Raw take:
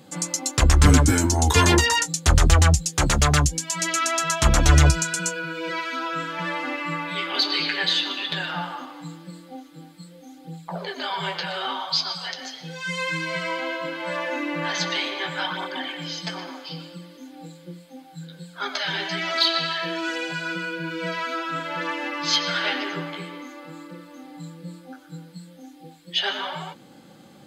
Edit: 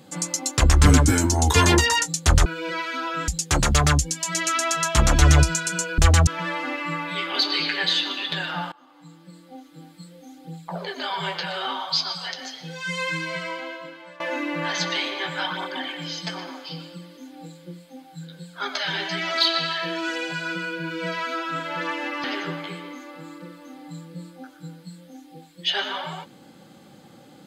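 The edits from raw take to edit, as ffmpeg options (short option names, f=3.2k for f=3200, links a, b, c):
-filter_complex "[0:a]asplit=8[a][b][c][d][e][f][g][h];[a]atrim=end=2.462[i];[b]atrim=start=5.448:end=6.272[j];[c]atrim=start=2.748:end=5.452[k];[d]atrim=start=2.458:end=2.752[l];[e]atrim=start=6.268:end=8.72,asetpts=PTS-STARTPTS,afade=t=out:st=2.448:d=0.004:c=hsin:silence=0.0630957[m];[f]atrim=start=8.72:end=14.2,asetpts=PTS-STARTPTS,afade=t=in:d=1.23:silence=0.0630957,afade=t=out:st=4.37:d=1.11:silence=0.0891251[n];[g]atrim=start=14.2:end=22.242,asetpts=PTS-STARTPTS,afade=t=in:d=0.004:c=hsin:silence=0.0891251[o];[h]atrim=start=22.728[p];[i][j]acrossfade=d=0.004:c1=hsin:c2=hsin[q];[q][k]acrossfade=d=0.004:c1=hsin:c2=hsin[r];[r][l]acrossfade=d=0.004:c1=hsin:c2=hsin[s];[m][n][o]concat=n=3:v=0:a=1[t];[s][t]acrossfade=d=0.004:c1=hsin:c2=hsin[u];[u][p]acrossfade=d=0.004:c1=hsin:c2=hsin"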